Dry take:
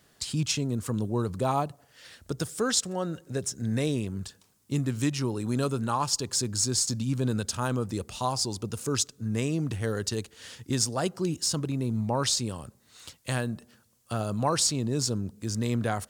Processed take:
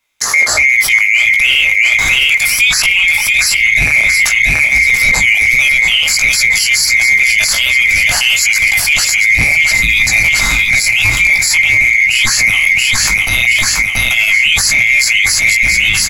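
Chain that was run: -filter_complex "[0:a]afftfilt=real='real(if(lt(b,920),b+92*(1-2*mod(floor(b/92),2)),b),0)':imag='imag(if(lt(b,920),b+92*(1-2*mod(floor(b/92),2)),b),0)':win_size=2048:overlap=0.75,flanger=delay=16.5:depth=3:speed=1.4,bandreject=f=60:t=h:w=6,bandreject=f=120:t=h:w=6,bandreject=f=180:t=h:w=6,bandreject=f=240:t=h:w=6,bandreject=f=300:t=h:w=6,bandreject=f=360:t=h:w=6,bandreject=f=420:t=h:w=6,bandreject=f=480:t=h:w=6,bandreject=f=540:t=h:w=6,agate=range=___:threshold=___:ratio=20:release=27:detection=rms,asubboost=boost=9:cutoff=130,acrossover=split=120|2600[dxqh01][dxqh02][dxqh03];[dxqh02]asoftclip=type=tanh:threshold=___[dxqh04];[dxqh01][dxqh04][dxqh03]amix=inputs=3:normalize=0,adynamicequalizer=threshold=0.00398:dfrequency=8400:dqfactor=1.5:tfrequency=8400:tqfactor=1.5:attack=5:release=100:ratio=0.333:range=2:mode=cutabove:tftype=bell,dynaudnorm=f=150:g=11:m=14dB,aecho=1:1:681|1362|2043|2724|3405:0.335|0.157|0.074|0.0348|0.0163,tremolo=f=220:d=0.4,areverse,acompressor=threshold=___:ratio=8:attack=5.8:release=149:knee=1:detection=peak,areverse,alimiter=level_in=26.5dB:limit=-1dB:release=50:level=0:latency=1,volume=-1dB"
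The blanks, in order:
-25dB, -58dB, -31dB, -28dB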